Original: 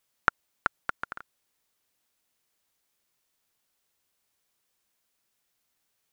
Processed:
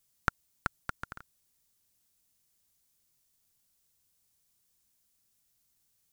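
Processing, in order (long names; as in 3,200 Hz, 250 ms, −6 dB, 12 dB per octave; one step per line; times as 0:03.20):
bass and treble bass +14 dB, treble +11 dB
level −6.5 dB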